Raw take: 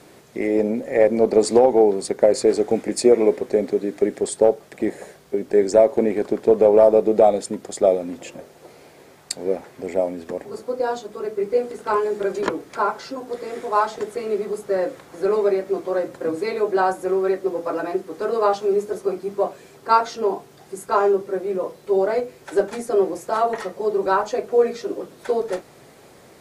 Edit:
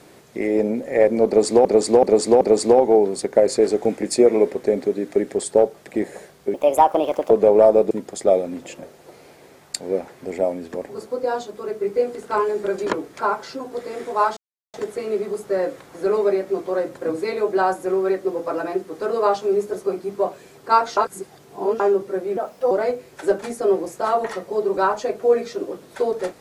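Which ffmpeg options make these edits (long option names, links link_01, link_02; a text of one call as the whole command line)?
ffmpeg -i in.wav -filter_complex "[0:a]asplit=12[link_01][link_02][link_03][link_04][link_05][link_06][link_07][link_08][link_09][link_10][link_11][link_12];[link_01]atrim=end=1.652[link_13];[link_02]atrim=start=1.268:end=1.652[link_14];[link_03]atrim=start=1.268:end=1.652[link_15];[link_04]atrim=start=1.268:end=5.404[link_16];[link_05]atrim=start=5.4:end=6.49,asetpts=PTS-STARTPTS,asetrate=62622,aresample=44100,atrim=end_sample=33851,asetpts=PTS-STARTPTS[link_17];[link_06]atrim=start=6.486:end=7.092[link_18];[link_07]atrim=start=7.468:end=13.93,asetpts=PTS-STARTPTS,afade=type=out:start_time=6.458:duration=0.004:curve=hsin,apad=pad_dur=0.37[link_19];[link_08]atrim=start=13.93:end=20.162,asetpts=PTS-STARTPTS,afade=type=in:duration=0.004:curve=hsin[link_20];[link_09]atrim=start=20.158:end=20.992,asetpts=PTS-STARTPTS,areverse[link_21];[link_10]atrim=start=20.988:end=21.564[link_22];[link_11]atrim=start=21.56:end=22,asetpts=PTS-STARTPTS,asetrate=56448,aresample=44100,atrim=end_sample=15159,asetpts=PTS-STARTPTS[link_23];[link_12]atrim=start=21.996[link_24];[link_13][link_14]acrossfade=duration=0.004:curve1=hsin:curve2=hsin[link_25];[link_25][link_15]acrossfade=duration=0.004:curve1=hsin:curve2=hsin[link_26];[link_26][link_16]acrossfade=duration=0.004:curve1=hsin:curve2=hsin[link_27];[link_27][link_17]acrossfade=duration=0.004:curve1=hsin:curve2=hsin[link_28];[link_28][link_18]acrossfade=duration=0.004:curve1=hsin:curve2=hsin[link_29];[link_19][link_20]concat=n=2:v=0:a=1[link_30];[link_29][link_30]acrossfade=duration=0.004:curve1=hsin:curve2=hsin[link_31];[link_31][link_21]acrossfade=duration=0.004:curve1=hsin:curve2=hsin[link_32];[link_32][link_22]acrossfade=duration=0.004:curve1=hsin:curve2=hsin[link_33];[link_33][link_23]acrossfade=duration=0.004:curve1=hsin:curve2=hsin[link_34];[link_34][link_24]acrossfade=duration=0.004:curve1=hsin:curve2=hsin" out.wav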